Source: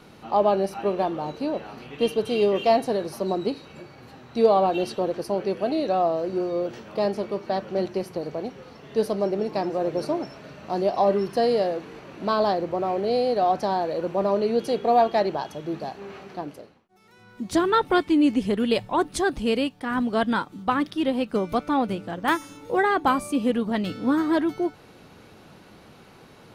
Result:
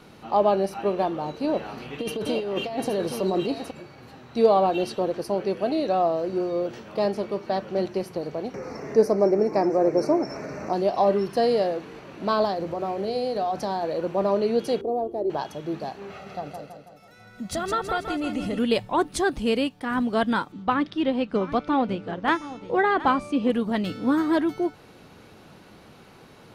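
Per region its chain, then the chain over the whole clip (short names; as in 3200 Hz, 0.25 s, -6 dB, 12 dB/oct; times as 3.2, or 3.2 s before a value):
1.44–3.71 negative-ratio compressor -26 dBFS + echo 0.82 s -7.5 dB
8.54–10.73 EQ curve 150 Hz 0 dB, 350 Hz +6 dB, 1600 Hz +1 dB, 2300 Hz +3 dB, 3200 Hz -21 dB, 5600 Hz +6 dB, 8800 Hz -3 dB + upward compressor, threshold -26 dBFS
12.45–13.83 tone controls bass +3 dB, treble +4 dB + compressor 2.5:1, threshold -24 dBFS + notches 60/120/180/240/300/360/420/480/540 Hz
14.81–15.3 EQ curve 110 Hz 0 dB, 180 Hz -14 dB, 330 Hz +5 dB, 1700 Hz -29 dB, 4800 Hz -26 dB, 10000 Hz -10 dB + upward compressor, threshold -34 dBFS
16.1–18.59 comb 1.5 ms, depth 66% + compressor 2:1, threshold -28 dBFS + feedback echo 0.163 s, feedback 50%, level -6 dB
20.52–23.5 LPF 4500 Hz + echo 0.722 s -15.5 dB
whole clip: dry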